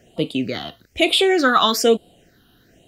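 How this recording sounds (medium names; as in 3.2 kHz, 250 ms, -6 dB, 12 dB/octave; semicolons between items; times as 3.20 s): phasing stages 6, 1.1 Hz, lowest notch 570–1700 Hz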